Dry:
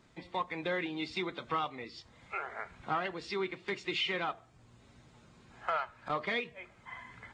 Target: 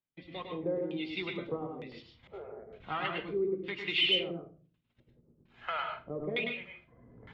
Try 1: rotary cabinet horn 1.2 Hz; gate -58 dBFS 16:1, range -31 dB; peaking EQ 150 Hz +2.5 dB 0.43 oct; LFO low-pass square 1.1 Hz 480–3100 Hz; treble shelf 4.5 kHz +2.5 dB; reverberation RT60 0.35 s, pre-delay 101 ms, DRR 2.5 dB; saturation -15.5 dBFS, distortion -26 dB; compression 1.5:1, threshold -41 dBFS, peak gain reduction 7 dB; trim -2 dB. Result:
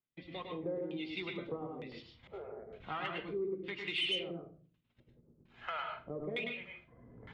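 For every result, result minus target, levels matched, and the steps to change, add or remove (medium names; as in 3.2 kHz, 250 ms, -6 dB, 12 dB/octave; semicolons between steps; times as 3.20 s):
saturation: distortion +14 dB; compression: peak gain reduction +7 dB
change: saturation -8 dBFS, distortion -40 dB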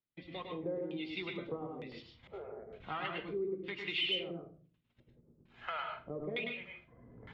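compression: peak gain reduction +7 dB
remove: compression 1.5:1, threshold -41 dBFS, peak gain reduction 7 dB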